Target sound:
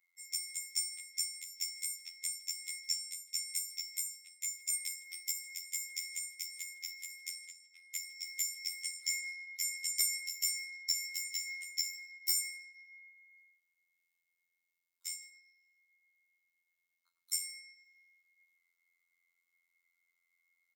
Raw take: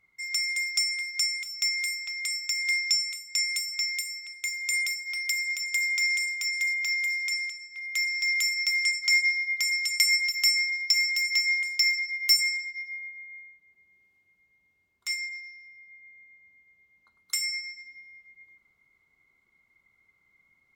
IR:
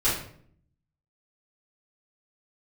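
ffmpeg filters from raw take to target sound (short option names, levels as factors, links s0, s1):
-af "afftfilt=real='hypot(re,im)*cos(PI*b)':imag='0':win_size=2048:overlap=0.75,aderivative,aeval=exprs='0.266*(cos(1*acos(clip(val(0)/0.266,-1,1)))-cos(1*PI/2))+0.00237*(cos(4*acos(clip(val(0)/0.266,-1,1)))-cos(4*PI/2))+0.0596*(cos(5*acos(clip(val(0)/0.266,-1,1)))-cos(5*PI/2))+0.0075*(cos(7*acos(clip(val(0)/0.266,-1,1)))-cos(7*PI/2))+0.00237*(cos(8*acos(clip(val(0)/0.266,-1,1)))-cos(8*PI/2))':c=same,aecho=1:1:158:0.0708,volume=0.596"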